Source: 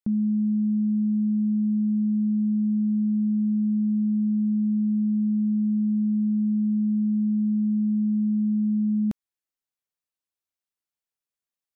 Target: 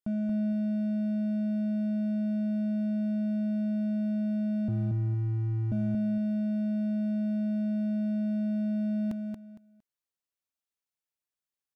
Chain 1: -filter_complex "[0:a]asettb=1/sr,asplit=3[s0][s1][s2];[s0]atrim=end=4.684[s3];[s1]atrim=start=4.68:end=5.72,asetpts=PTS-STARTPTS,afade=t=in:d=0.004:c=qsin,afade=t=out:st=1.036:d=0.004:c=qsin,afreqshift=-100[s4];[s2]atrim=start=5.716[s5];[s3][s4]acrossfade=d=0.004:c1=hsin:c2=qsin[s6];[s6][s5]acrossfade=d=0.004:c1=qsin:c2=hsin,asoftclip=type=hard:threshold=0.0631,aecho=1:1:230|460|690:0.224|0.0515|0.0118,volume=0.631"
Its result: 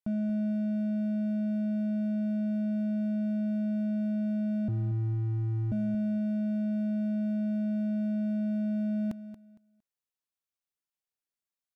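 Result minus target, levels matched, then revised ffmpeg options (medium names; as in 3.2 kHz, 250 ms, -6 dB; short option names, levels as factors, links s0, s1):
echo-to-direct -8 dB
-filter_complex "[0:a]asettb=1/sr,asplit=3[s0][s1][s2];[s0]atrim=end=4.684[s3];[s1]atrim=start=4.68:end=5.72,asetpts=PTS-STARTPTS,afade=t=in:d=0.004:c=qsin,afade=t=out:st=1.036:d=0.004:c=qsin,afreqshift=-100[s4];[s2]atrim=start=5.716[s5];[s3][s4]acrossfade=d=0.004:c1=hsin:c2=qsin[s6];[s6][s5]acrossfade=d=0.004:c1=qsin:c2=hsin,asoftclip=type=hard:threshold=0.0631,aecho=1:1:230|460|690:0.562|0.129|0.0297,volume=0.631"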